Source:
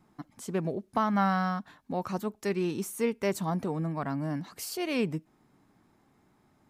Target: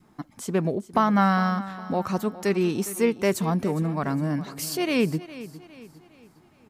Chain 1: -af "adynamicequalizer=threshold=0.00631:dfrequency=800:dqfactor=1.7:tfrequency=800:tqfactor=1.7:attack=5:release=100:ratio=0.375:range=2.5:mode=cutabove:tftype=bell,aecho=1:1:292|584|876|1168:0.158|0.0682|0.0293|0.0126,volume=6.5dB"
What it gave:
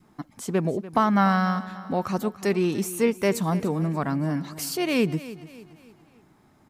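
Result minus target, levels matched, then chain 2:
echo 0.117 s early
-af "adynamicequalizer=threshold=0.00631:dfrequency=800:dqfactor=1.7:tfrequency=800:tqfactor=1.7:attack=5:release=100:ratio=0.375:range=2.5:mode=cutabove:tftype=bell,aecho=1:1:409|818|1227|1636:0.158|0.0682|0.0293|0.0126,volume=6.5dB"

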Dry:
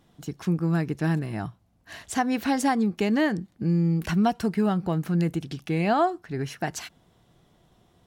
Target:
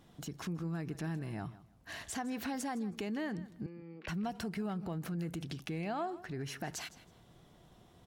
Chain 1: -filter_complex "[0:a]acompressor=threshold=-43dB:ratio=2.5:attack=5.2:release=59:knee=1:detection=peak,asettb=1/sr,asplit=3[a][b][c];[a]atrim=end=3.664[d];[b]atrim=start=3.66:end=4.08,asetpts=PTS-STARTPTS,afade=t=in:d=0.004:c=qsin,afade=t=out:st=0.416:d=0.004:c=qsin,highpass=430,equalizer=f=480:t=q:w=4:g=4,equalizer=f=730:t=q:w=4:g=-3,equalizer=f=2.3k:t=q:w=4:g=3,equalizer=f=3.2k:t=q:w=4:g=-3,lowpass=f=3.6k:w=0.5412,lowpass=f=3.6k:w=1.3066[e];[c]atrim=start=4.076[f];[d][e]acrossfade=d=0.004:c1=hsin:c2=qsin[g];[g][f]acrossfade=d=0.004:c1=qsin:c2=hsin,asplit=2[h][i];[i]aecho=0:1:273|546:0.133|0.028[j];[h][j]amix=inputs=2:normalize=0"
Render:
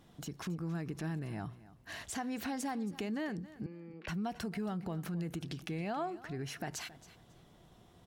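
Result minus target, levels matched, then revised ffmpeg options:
echo 0.113 s late
-filter_complex "[0:a]acompressor=threshold=-43dB:ratio=2.5:attack=5.2:release=59:knee=1:detection=peak,asettb=1/sr,asplit=3[a][b][c];[a]atrim=end=3.664[d];[b]atrim=start=3.66:end=4.08,asetpts=PTS-STARTPTS,afade=t=in:d=0.004:c=qsin,afade=t=out:st=0.416:d=0.004:c=qsin,highpass=430,equalizer=f=480:t=q:w=4:g=4,equalizer=f=730:t=q:w=4:g=-3,equalizer=f=2.3k:t=q:w=4:g=3,equalizer=f=3.2k:t=q:w=4:g=-3,lowpass=f=3.6k:w=0.5412,lowpass=f=3.6k:w=1.3066[e];[c]atrim=start=4.076[f];[d][e]acrossfade=d=0.004:c1=hsin:c2=qsin[g];[g][f]acrossfade=d=0.004:c1=qsin:c2=hsin,asplit=2[h][i];[i]aecho=0:1:160|320:0.133|0.028[j];[h][j]amix=inputs=2:normalize=0"

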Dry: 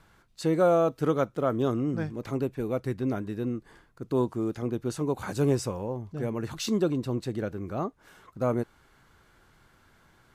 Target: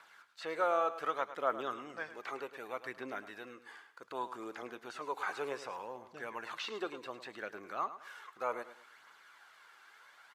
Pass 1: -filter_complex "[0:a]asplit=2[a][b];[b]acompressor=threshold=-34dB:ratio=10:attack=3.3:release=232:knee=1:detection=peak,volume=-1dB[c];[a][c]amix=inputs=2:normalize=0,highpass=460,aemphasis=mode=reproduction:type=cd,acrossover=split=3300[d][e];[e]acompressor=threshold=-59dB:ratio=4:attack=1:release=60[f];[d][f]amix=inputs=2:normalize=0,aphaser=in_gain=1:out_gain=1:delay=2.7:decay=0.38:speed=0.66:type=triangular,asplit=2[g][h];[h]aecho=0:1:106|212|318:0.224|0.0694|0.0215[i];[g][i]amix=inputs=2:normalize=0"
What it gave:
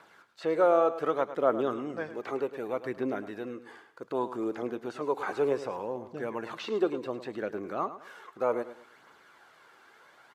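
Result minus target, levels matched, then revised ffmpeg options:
1000 Hz band -4.5 dB
-filter_complex "[0:a]asplit=2[a][b];[b]acompressor=threshold=-34dB:ratio=10:attack=3.3:release=232:knee=1:detection=peak,volume=-1dB[c];[a][c]amix=inputs=2:normalize=0,highpass=1.1k,aemphasis=mode=reproduction:type=cd,acrossover=split=3300[d][e];[e]acompressor=threshold=-59dB:ratio=4:attack=1:release=60[f];[d][f]amix=inputs=2:normalize=0,aphaser=in_gain=1:out_gain=1:delay=2.7:decay=0.38:speed=0.66:type=triangular,asplit=2[g][h];[h]aecho=0:1:106|212|318:0.224|0.0694|0.0215[i];[g][i]amix=inputs=2:normalize=0"

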